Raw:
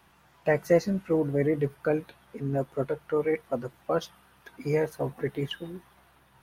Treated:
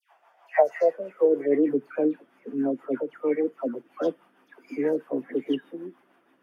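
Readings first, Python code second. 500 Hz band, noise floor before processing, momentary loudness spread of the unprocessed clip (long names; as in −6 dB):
+2.5 dB, −61 dBFS, 13 LU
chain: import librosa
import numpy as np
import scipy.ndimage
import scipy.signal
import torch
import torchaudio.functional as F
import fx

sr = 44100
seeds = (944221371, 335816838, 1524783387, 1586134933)

y = fx.bass_treble(x, sr, bass_db=-7, treble_db=-11)
y = fx.notch(y, sr, hz=4000.0, q=5.1)
y = fx.dispersion(y, sr, late='lows', ms=126.0, hz=1400.0)
y = fx.rotary(y, sr, hz=6.3)
y = fx.filter_sweep_highpass(y, sr, from_hz=690.0, to_hz=270.0, start_s=0.8, end_s=1.7, q=4.2)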